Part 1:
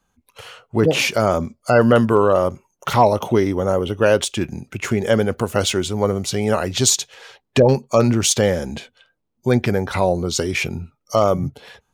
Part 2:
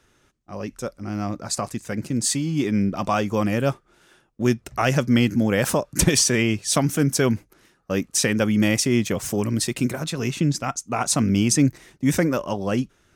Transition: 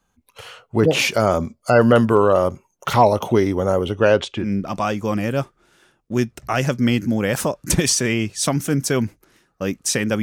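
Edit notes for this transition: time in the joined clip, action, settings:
part 1
3.89–4.53 s: low-pass 10 kHz -> 1.5 kHz
4.44 s: go over to part 2 from 2.73 s, crossfade 0.18 s

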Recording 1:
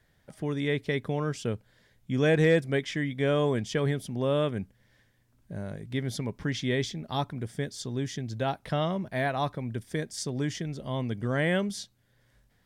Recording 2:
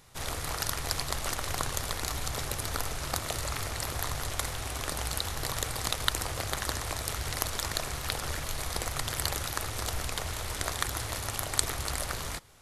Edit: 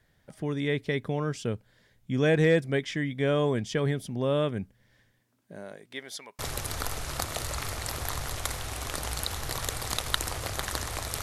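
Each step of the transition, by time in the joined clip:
recording 1
5.18–6.39 s: high-pass 150 Hz -> 1.2 kHz
6.39 s: go over to recording 2 from 2.33 s

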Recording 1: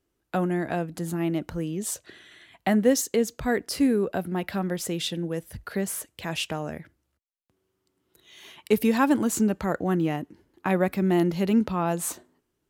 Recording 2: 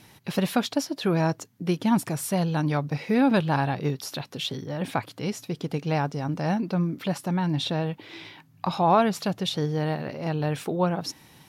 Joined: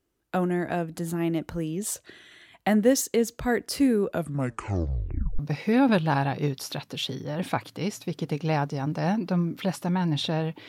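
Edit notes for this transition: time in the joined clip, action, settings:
recording 1
4.07 s: tape stop 1.32 s
5.39 s: go over to recording 2 from 2.81 s

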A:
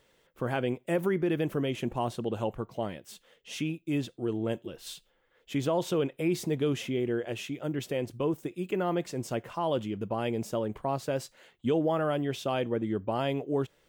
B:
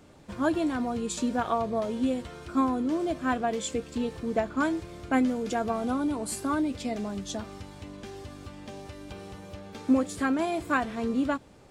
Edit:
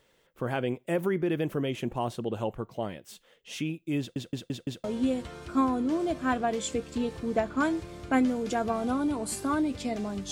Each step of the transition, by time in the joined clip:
A
3.99 s: stutter in place 0.17 s, 5 plays
4.84 s: go over to B from 1.84 s

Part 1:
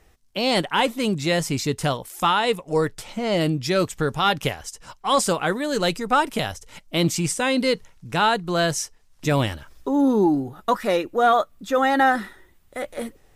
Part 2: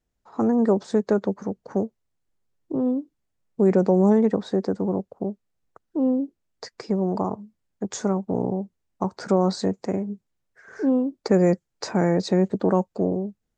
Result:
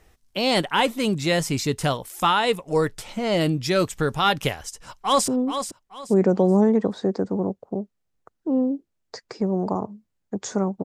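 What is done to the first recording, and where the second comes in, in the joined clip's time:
part 1
4.64–5.28 s: echo throw 430 ms, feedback 30%, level -8.5 dB
5.28 s: go over to part 2 from 2.77 s

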